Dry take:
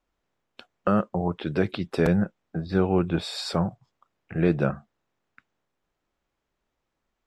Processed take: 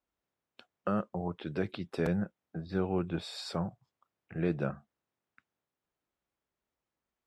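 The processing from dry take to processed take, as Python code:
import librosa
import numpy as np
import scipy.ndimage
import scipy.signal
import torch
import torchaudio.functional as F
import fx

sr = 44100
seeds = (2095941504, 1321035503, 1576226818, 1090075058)

y = scipy.signal.sosfilt(scipy.signal.butter(2, 57.0, 'highpass', fs=sr, output='sos'), x)
y = F.gain(torch.from_numpy(y), -9.0).numpy()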